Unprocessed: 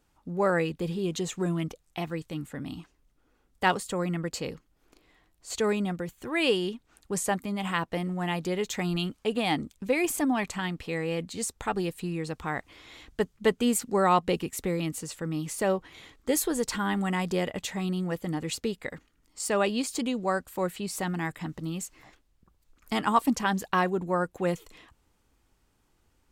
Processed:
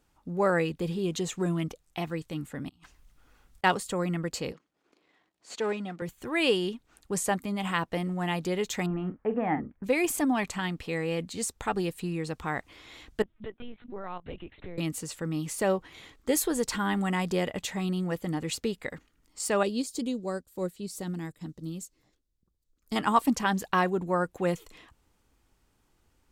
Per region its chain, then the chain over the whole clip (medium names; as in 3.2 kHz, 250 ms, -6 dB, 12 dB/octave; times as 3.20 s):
2.69–3.64 s: peaking EQ 350 Hz -10 dB 1.7 oct + compressor with a negative ratio -59 dBFS
4.52–6.02 s: partial rectifier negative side -7 dB + high-pass 220 Hz + distance through air 67 m
8.86–9.84 s: Chebyshev low-pass 1.9 kHz, order 4 + doubling 44 ms -10 dB
13.22–14.78 s: compression 3:1, threshold -40 dBFS + LPC vocoder at 8 kHz pitch kept
19.63–22.96 s: high-order bell 1.4 kHz -9.5 dB 2.4 oct + upward expansion, over -48 dBFS
whole clip: none